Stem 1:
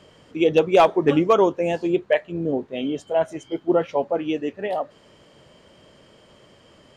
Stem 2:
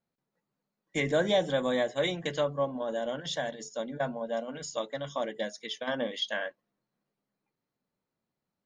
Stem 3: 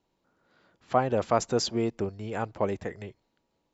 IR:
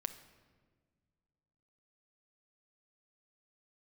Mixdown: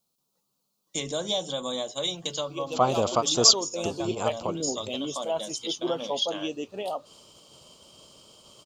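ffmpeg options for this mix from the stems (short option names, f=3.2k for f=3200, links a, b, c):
-filter_complex "[0:a]agate=range=-33dB:threshold=-47dB:ratio=3:detection=peak,adelay=2150,volume=-2dB,afade=t=in:st=3.38:d=0.7:silence=0.251189[a];[1:a]volume=1dB,asplit=2[b][c];[2:a]adelay=1850,volume=0dB[d];[c]apad=whole_len=246330[e];[d][e]sidechaingate=range=-33dB:threshold=-35dB:ratio=16:detection=peak[f];[a][b]amix=inputs=2:normalize=0,acompressor=threshold=-41dB:ratio=1.5,volume=0dB[g];[f][g]amix=inputs=2:normalize=0,highshelf=f=1.5k:t=q:w=3:g=-6.5,aexciter=amount=11:drive=4.2:freq=2.6k"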